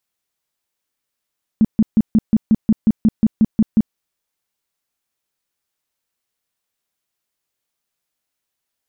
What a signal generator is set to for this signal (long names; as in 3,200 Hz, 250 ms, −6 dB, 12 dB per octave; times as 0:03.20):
tone bursts 219 Hz, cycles 8, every 0.18 s, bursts 13, −8 dBFS